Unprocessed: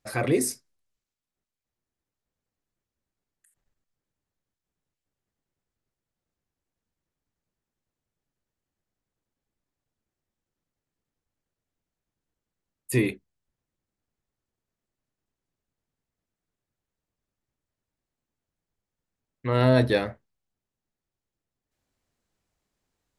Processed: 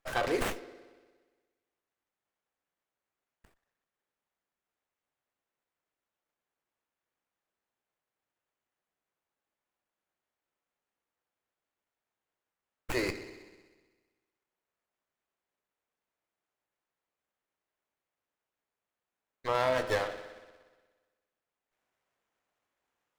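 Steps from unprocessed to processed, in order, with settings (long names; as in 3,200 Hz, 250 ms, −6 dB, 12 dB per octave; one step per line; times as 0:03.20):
high-pass filter 610 Hz 12 dB per octave
downward compressor, threshold −26 dBFS, peak gain reduction 6 dB
spring reverb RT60 1.4 s, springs 58 ms, chirp 55 ms, DRR 8.5 dB
windowed peak hold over 9 samples
level +2 dB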